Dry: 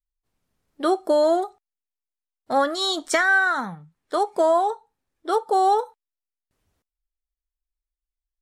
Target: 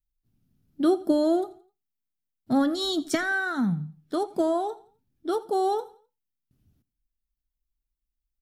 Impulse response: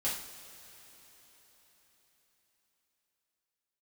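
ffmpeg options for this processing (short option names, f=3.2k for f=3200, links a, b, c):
-filter_complex "[0:a]equalizer=f=125:t=o:w=1:g=9,equalizer=f=250:t=o:w=1:g=7,equalizer=f=500:t=o:w=1:g=-11,equalizer=f=1k:t=o:w=1:g=-12,equalizer=f=2k:t=o:w=1:g=-10,equalizer=f=4k:t=o:w=1:g=-4,equalizer=f=8k:t=o:w=1:g=-11,asplit=2[a][b];[b]aecho=0:1:85|170|255:0.1|0.037|0.0137[c];[a][c]amix=inputs=2:normalize=0,volume=4dB"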